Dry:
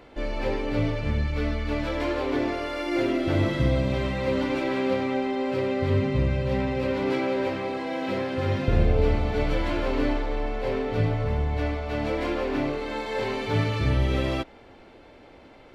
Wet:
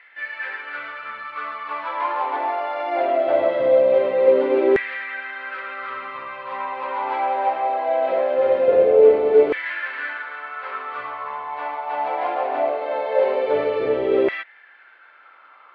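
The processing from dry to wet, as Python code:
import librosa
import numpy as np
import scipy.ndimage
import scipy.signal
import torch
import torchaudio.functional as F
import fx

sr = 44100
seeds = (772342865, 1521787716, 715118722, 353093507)

y = fx.air_absorb(x, sr, metres=390.0)
y = fx.filter_lfo_highpass(y, sr, shape='saw_down', hz=0.21, low_hz=400.0, high_hz=1900.0, q=6.3)
y = y * librosa.db_to_amplitude(3.0)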